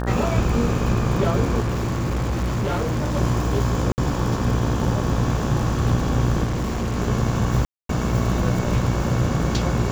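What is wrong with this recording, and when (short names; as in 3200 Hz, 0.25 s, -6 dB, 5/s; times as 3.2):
buzz 60 Hz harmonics 30 -25 dBFS
crackle 52/s -26 dBFS
1.6–3.16 clipped -19.5 dBFS
3.92–3.98 gap 59 ms
6.43–6.98 clipped -20.5 dBFS
7.65–7.89 gap 0.243 s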